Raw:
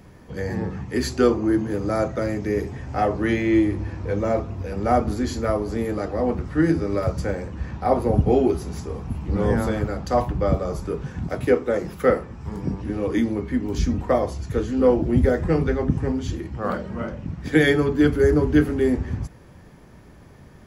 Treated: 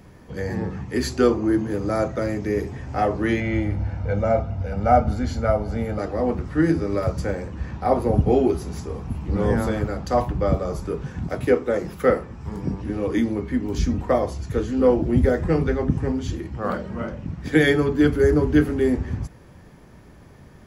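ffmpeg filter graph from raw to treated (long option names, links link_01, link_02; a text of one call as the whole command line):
ffmpeg -i in.wav -filter_complex "[0:a]asettb=1/sr,asplit=3[link_01][link_02][link_03];[link_01]atrim=end=3.404[link_04];[link_02]atrim=start=3.4:end=5.99,asetpts=PTS-STARTPTS,afade=type=in:duration=0.004:curve=qsin,afade=type=out:start_time=2.586:duration=0.004:curve=qsin,lowpass=frequency=2900:poles=1,aecho=1:1:1.4:0.71,atrim=end_sample=114219[link_05];[link_03]atrim=start=5.986[link_06];[link_04][link_05]acrossfade=duration=0.004:curve1=hsin:curve2=qsin[link_07];[link_07][link_06]acrossfade=duration=0.004:curve1=qsin:curve2=hsin" out.wav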